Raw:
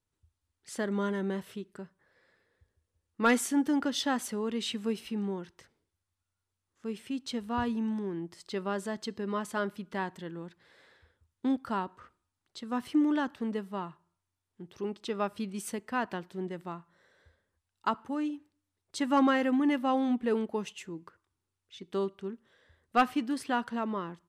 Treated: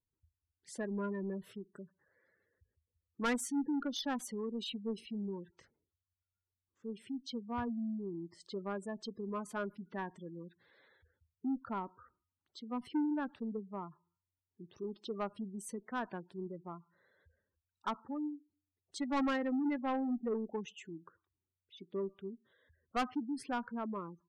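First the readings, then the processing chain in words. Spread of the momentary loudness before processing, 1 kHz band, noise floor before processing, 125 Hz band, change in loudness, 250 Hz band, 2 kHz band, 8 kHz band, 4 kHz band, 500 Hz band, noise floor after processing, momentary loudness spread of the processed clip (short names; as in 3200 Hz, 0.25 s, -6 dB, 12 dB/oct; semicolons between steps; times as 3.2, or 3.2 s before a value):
17 LU, -8.0 dB, under -85 dBFS, -6.0 dB, -7.5 dB, -6.5 dB, -8.5 dB, -7.0 dB, -7.0 dB, -7.0 dB, under -85 dBFS, 16 LU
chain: added harmonics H 3 -16 dB, 4 -26 dB, 6 -25 dB, 8 -43 dB, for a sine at -15 dBFS; spectral gate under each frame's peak -15 dB strong; soft clip -28.5 dBFS, distortion -9 dB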